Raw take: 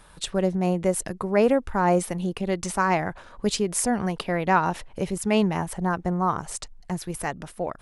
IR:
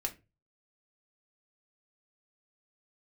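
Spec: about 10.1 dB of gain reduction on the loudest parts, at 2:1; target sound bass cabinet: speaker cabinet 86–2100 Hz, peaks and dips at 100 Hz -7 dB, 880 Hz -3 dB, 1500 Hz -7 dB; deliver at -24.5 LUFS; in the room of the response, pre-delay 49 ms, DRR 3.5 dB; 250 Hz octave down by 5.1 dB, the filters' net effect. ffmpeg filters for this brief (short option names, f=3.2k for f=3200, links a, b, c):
-filter_complex "[0:a]equalizer=f=250:t=o:g=-7.5,acompressor=threshold=-36dB:ratio=2,asplit=2[a][b];[1:a]atrim=start_sample=2205,adelay=49[c];[b][c]afir=irnorm=-1:irlink=0,volume=-5dB[d];[a][d]amix=inputs=2:normalize=0,highpass=f=86:w=0.5412,highpass=f=86:w=1.3066,equalizer=f=100:t=q:w=4:g=-7,equalizer=f=880:t=q:w=4:g=-3,equalizer=f=1.5k:t=q:w=4:g=-7,lowpass=f=2.1k:w=0.5412,lowpass=f=2.1k:w=1.3066,volume=10.5dB"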